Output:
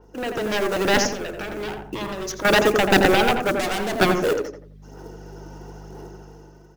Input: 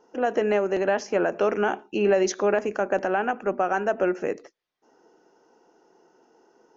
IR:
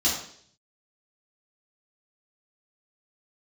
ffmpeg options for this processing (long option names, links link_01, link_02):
-filter_complex "[0:a]aphaser=in_gain=1:out_gain=1:delay=3.4:decay=0.44:speed=1:type=sinusoidal,aeval=exprs='0.422*(cos(1*acos(clip(val(0)/0.422,-1,1)))-cos(1*PI/2))+0.00376*(cos(2*acos(clip(val(0)/0.422,-1,1)))-cos(2*PI/2))+0.188*(cos(3*acos(clip(val(0)/0.422,-1,1)))-cos(3*PI/2))+0.00335*(cos(5*acos(clip(val(0)/0.422,-1,1)))-cos(5*PI/2))+0.075*(cos(7*acos(clip(val(0)/0.422,-1,1)))-cos(7*PI/2))':channel_layout=same,asettb=1/sr,asplit=3[link_01][link_02][link_03];[link_01]atrim=end=1.084[link_04];[link_02]atrim=start=1.08:end=2.45,asetpts=PTS-STARTPTS,afade=type=in:duration=0.004:curve=qsin,afade=type=out:start_time=1.366:duration=0.004:curve=qsin,acompressor=threshold=-39dB:ratio=6[link_05];[link_03]atrim=start=2.446[link_06];[link_04][link_05]acrossfade=duration=0.004:curve1=hsin:curve2=qsin[link_07];[link_07][link_06]acrossfade=duration=0.004:curve1=qsin:curve2=hsin,asettb=1/sr,asplit=3[link_08][link_09][link_10];[link_08]atrim=end=3.544[link_11];[link_09]atrim=start=3.54:end=3.96,asetpts=PTS-STARTPTS,afade=type=in:duration=0.004:curve=qsin,afade=type=out:start_time=0.416:duration=0.004:curve=qsin,asoftclip=type=hard:threshold=-28.5dB[link_12];[link_10]atrim=start=3.956[link_13];[link_11][link_12]acrossfade=duration=0.004:curve1=hsin:curve2=qsin[link_14];[link_14][link_13]acrossfade=duration=0.004:curve1=qsin:curve2=hsin,equalizer=frequency=860:width=0.49:gain=-3.5,acrusher=bits=5:mode=log:mix=0:aa=0.000001,aeval=exprs='val(0)+0.00282*(sin(2*PI*50*n/s)+sin(2*PI*2*50*n/s)/2+sin(2*PI*3*50*n/s)/3+sin(2*PI*4*50*n/s)/4+sin(2*PI*5*50*n/s)/5)':channel_layout=same,dynaudnorm=framelen=340:gausssize=5:maxgain=14dB,asplit=2[link_15][link_16];[link_16]adelay=86,lowpass=frequency=1400:poles=1,volume=-3.5dB,asplit=2[link_17][link_18];[link_18]adelay=86,lowpass=frequency=1400:poles=1,volume=0.37,asplit=2[link_19][link_20];[link_20]adelay=86,lowpass=frequency=1400:poles=1,volume=0.37,asplit=2[link_21][link_22];[link_22]adelay=86,lowpass=frequency=1400:poles=1,volume=0.37,asplit=2[link_23][link_24];[link_24]adelay=86,lowpass=frequency=1400:poles=1,volume=0.37[link_25];[link_15][link_17][link_19][link_21][link_23][link_25]amix=inputs=6:normalize=0,adynamicequalizer=threshold=0.02:dfrequency=4000:dqfactor=0.7:tfrequency=4000:tqfactor=0.7:attack=5:release=100:ratio=0.375:range=2:mode=boostabove:tftype=highshelf,volume=-1dB"